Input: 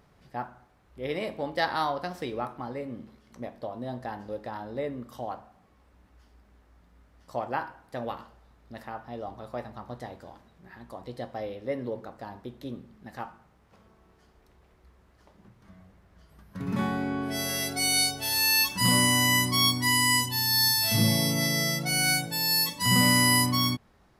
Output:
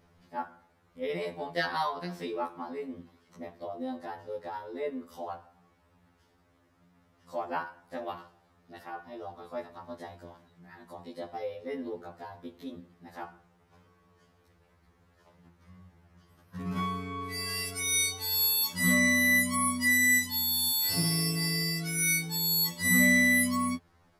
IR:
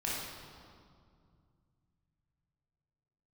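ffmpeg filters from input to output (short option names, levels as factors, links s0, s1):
-af "afftfilt=real='re*2*eq(mod(b,4),0)':imag='im*2*eq(mod(b,4),0)':win_size=2048:overlap=0.75"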